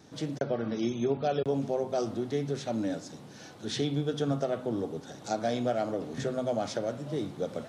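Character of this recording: noise floor -48 dBFS; spectral tilt -6.0 dB/octave

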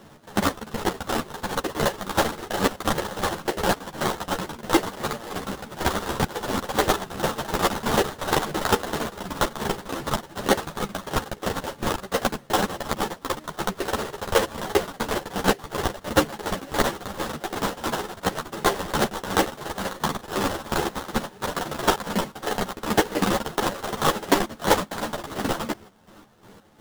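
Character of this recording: aliases and images of a low sample rate 2.4 kHz, jitter 20%; chopped level 2.8 Hz, depth 65%, duty 45%; a shimmering, thickened sound

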